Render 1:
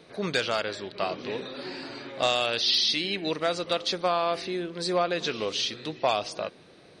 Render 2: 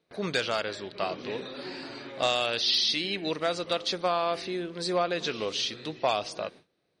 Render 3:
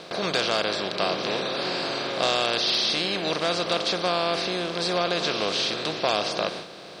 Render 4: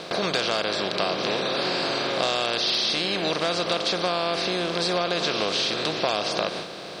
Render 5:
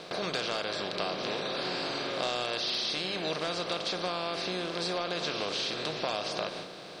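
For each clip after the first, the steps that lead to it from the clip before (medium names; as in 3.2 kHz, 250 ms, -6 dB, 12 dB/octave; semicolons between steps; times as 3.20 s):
gate with hold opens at -39 dBFS; trim -1.5 dB
spectral levelling over time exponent 0.4; trim -2 dB
compression 2.5:1, threshold -28 dBFS, peak gain reduction 6.5 dB; trim +5 dB
reverberation, pre-delay 7 ms, DRR 11.5 dB; trim -8 dB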